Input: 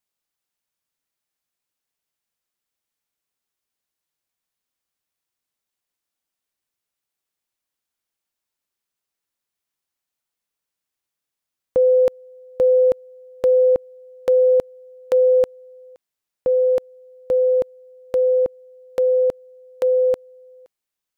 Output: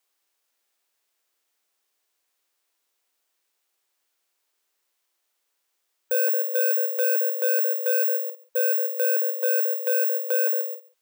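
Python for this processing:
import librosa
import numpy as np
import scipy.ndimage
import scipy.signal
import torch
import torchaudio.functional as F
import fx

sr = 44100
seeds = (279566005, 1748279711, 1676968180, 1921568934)

p1 = x + 10.0 ** (-21.5 / 20.0) * np.pad(x, (int(267 * sr / 1000.0), 0))[:len(x)]
p2 = fx.stretch_vocoder(p1, sr, factor=0.52)
p3 = (np.kron(scipy.signal.resample_poly(p2, 1, 2), np.eye(2)[0]) * 2)[:len(p2)]
p4 = fx.over_compress(p3, sr, threshold_db=-21.0, ratio=-0.5)
p5 = p3 + (p4 * librosa.db_to_amplitude(-2.0))
p6 = scipy.signal.sosfilt(scipy.signal.butter(4, 310.0, 'highpass', fs=sr, output='sos'), p5)
p7 = fx.room_early_taps(p6, sr, ms=(34, 52), db=(-17.0, -10.0))
y = 10.0 ** (-20.5 / 20.0) * np.tanh(p7 / 10.0 ** (-20.5 / 20.0))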